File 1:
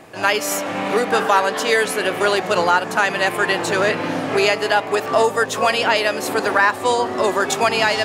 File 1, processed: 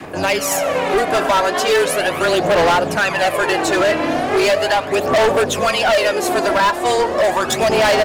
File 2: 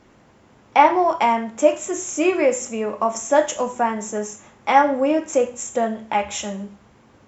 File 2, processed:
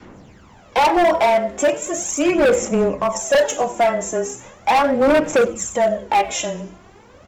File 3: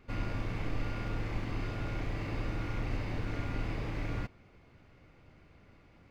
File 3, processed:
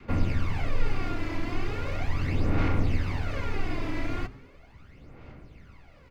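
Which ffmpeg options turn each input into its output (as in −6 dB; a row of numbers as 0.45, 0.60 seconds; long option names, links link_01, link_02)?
-filter_complex "[0:a]bandreject=frequency=60:width_type=h:width=6,bandreject=frequency=120:width_type=h:width=6,adynamicequalizer=threshold=0.0224:dfrequency=630:dqfactor=2.7:tfrequency=630:tqfactor=2.7:attack=5:release=100:ratio=0.375:range=3.5:mode=boostabove:tftype=bell,asplit=2[link_01][link_02];[link_02]acompressor=threshold=-32dB:ratio=6,volume=-2.5dB[link_03];[link_01][link_03]amix=inputs=2:normalize=0,aphaser=in_gain=1:out_gain=1:delay=3:decay=0.6:speed=0.38:type=sinusoidal,afreqshift=-16,asoftclip=type=hard:threshold=-11.5dB,asplit=4[link_04][link_05][link_06][link_07];[link_05]adelay=96,afreqshift=-140,volume=-21dB[link_08];[link_06]adelay=192,afreqshift=-280,volume=-27.4dB[link_09];[link_07]adelay=288,afreqshift=-420,volume=-33.8dB[link_10];[link_04][link_08][link_09][link_10]amix=inputs=4:normalize=0"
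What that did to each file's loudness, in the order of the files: +2.0, +2.5, +6.5 LU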